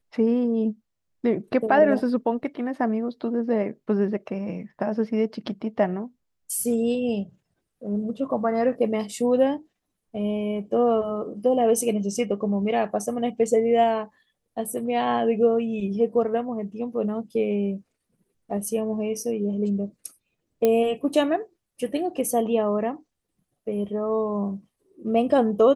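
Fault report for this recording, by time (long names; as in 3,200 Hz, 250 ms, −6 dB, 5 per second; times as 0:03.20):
0:20.65: click −9 dBFS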